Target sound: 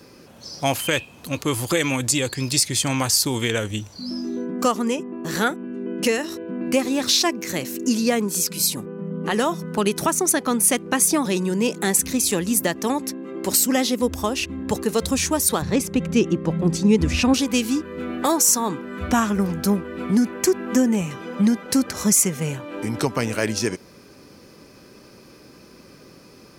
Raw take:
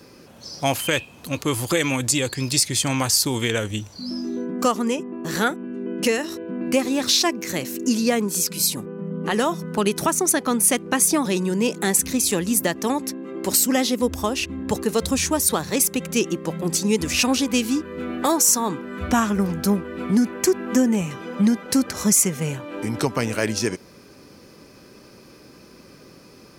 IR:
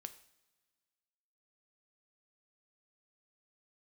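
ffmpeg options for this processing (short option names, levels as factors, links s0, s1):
-filter_complex "[0:a]asettb=1/sr,asplit=3[s0][s1][s2];[s0]atrim=end=15.624[s3];[s1]atrim=start=15.62:end=17.34,asetpts=PTS-STARTPTS,afade=t=in:d=0.004:c=qsin,afade=t=out:st=1.716:d=0.004:c=qsin,aemphasis=mode=reproduction:type=bsi[s4];[s2]atrim=start=17.336[s5];[s3][s4]acrossfade=d=0.004:c1=hsin:c2=qsin[s6];[s6][s5]acrossfade=d=0.004:c1=qsin:c2=hsin"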